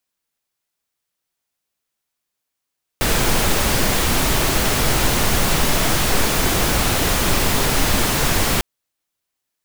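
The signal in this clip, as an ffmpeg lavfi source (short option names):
-f lavfi -i "anoisesrc=c=pink:a=0.724:d=5.6:r=44100:seed=1"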